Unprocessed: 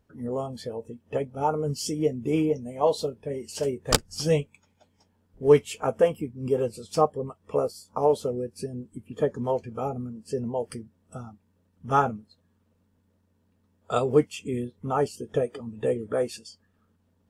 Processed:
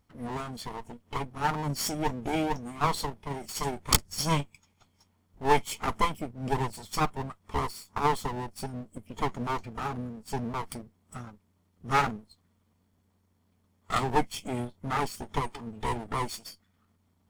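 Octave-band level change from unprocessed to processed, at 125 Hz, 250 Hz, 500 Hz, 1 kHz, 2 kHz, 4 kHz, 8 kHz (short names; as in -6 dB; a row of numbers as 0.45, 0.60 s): -2.0, -4.0, -11.0, +1.0, +4.5, +1.0, +1.0 dB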